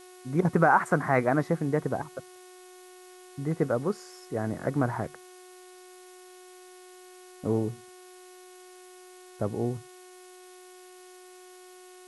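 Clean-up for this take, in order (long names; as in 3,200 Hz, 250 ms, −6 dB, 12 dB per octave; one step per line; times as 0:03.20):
hum removal 365.7 Hz, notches 19
broadband denoise 23 dB, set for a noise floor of −50 dBFS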